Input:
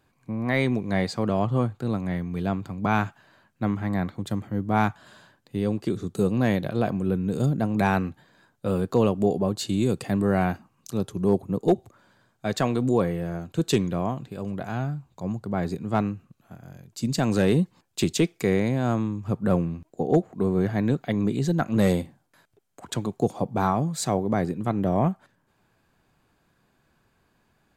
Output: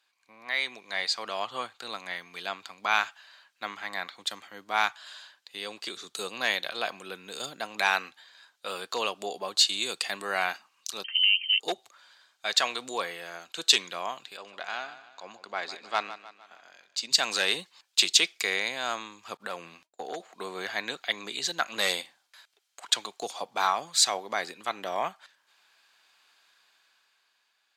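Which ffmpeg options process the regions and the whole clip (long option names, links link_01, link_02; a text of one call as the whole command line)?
ffmpeg -i in.wav -filter_complex "[0:a]asettb=1/sr,asplit=3[link_01][link_02][link_03];[link_01]atrim=end=11.044[link_04];[link_02]atrim=start=11.04:end=11.6,asetpts=PTS-STARTPTS,afade=type=in:duration=0.004:curve=qsin,afade=type=out:start_time=0.556:duration=0.004:curve=qsin,equalizer=frequency=170:width_type=o:width=1.3:gain=-6.5,acompressor=threshold=-28dB:ratio=6:attack=3.2:release=140:knee=1:detection=peak,lowpass=frequency=2700:width_type=q:width=0.5098,lowpass=frequency=2700:width_type=q:width=0.6013,lowpass=frequency=2700:width_type=q:width=0.9,lowpass=frequency=2700:width_type=q:width=2.563,afreqshift=-3200[link_05];[link_03]atrim=start=11.596[link_06];[link_04][link_05]acrossfade=duration=0.004:curve1=hsin:curve2=qsin[link_07];[link_07][link_06]acrossfade=duration=0.004:curve1=qsin:curve2=hsin,asettb=1/sr,asplit=3[link_08][link_09][link_10];[link_08]atrim=end=14.374[link_11];[link_09]atrim=start=14.37:end=17.11,asetpts=PTS-STARTPTS,afade=type=in:duration=0.004:curve=qsin,afade=type=out:start_time=2.736:duration=0.004:curve=qsin,equalizer=frequency=140:width_type=o:width=0.7:gain=-13,adynamicsmooth=sensitivity=6.5:basefreq=5200,aecho=1:1:153|306|459|612:0.2|0.0938|0.0441|0.0207,atrim=end_sample=120834[link_12];[link_10]atrim=start=17.106[link_13];[link_11][link_12]acrossfade=duration=0.004:curve1=hsin:curve2=qsin[link_14];[link_14][link_13]acrossfade=duration=0.004:curve1=qsin:curve2=hsin,asettb=1/sr,asplit=3[link_15][link_16][link_17];[link_15]atrim=end=19.374[link_18];[link_16]atrim=start=19.37:end=20.2,asetpts=PTS-STARTPTS,afade=type=in:duration=0.004:curve=qsin,afade=type=out:start_time=0.826:duration=0.004:curve=qsin,highpass=42,agate=range=-33dB:threshold=-45dB:ratio=3:release=100:detection=peak,acompressor=threshold=-22dB:ratio=5:attack=3.2:release=140:knee=1:detection=peak[link_19];[link_17]atrim=start=20.196[link_20];[link_18][link_19]acrossfade=duration=0.004:curve1=hsin:curve2=qsin[link_21];[link_21][link_20]acrossfade=duration=0.004:curve1=qsin:curve2=hsin,dynaudnorm=framelen=140:gausssize=17:maxgain=11.5dB,highpass=880,equalizer=frequency=4000:width_type=o:width=2.1:gain=14,volume=-9dB" out.wav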